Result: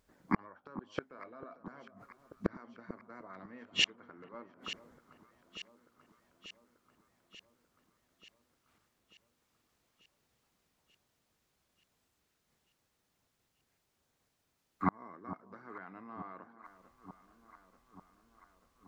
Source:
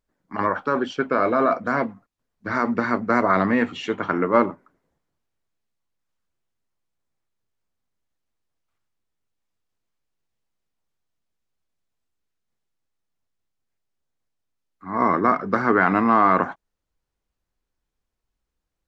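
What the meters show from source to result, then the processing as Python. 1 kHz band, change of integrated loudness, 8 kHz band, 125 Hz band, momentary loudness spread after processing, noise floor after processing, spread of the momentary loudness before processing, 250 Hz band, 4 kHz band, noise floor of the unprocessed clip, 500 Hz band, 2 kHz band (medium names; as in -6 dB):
-23.0 dB, -19.0 dB, no reading, -14.0 dB, 22 LU, -80 dBFS, 10 LU, -19.0 dB, +3.5 dB, -82 dBFS, -25.0 dB, -17.5 dB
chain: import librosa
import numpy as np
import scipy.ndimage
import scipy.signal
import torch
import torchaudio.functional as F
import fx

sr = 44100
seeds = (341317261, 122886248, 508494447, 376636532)

y = fx.highpass(x, sr, hz=50.0, slope=6)
y = fx.gate_flip(y, sr, shuts_db=-23.0, range_db=-41)
y = fx.echo_alternate(y, sr, ms=444, hz=1100.0, feedback_pct=78, wet_db=-12)
y = y * 10.0 ** (9.5 / 20.0)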